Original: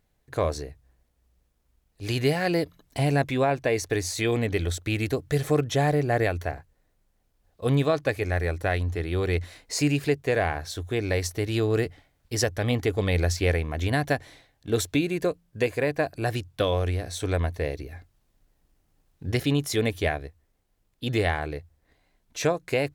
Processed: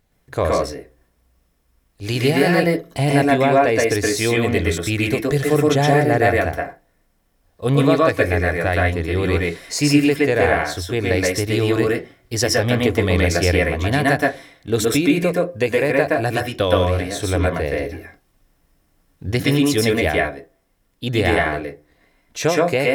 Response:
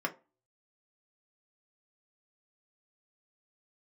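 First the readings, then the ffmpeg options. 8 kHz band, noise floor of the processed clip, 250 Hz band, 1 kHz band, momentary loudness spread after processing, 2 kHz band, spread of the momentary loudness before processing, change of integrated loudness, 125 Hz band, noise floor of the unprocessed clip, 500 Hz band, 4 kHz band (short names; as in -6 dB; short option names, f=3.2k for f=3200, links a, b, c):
+7.5 dB, -63 dBFS, +9.0 dB, +9.0 dB, 10 LU, +10.0 dB, 9 LU, +8.0 dB, +5.5 dB, -70 dBFS, +8.5 dB, +8.0 dB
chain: -filter_complex "[0:a]asplit=2[a][b];[1:a]atrim=start_sample=2205,highshelf=f=3.1k:g=10.5,adelay=119[c];[b][c]afir=irnorm=-1:irlink=0,volume=-5.5dB[d];[a][d]amix=inputs=2:normalize=0,volume=5dB"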